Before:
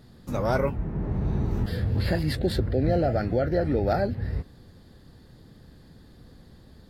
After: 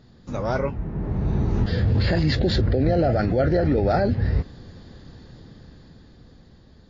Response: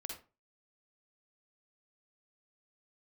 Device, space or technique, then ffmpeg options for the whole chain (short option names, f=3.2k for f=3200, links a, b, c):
low-bitrate web radio: -af "dynaudnorm=f=240:g=13:m=10dB,alimiter=limit=-12.5dB:level=0:latency=1:release=17" -ar 16000 -c:a libmp3lame -b:a 40k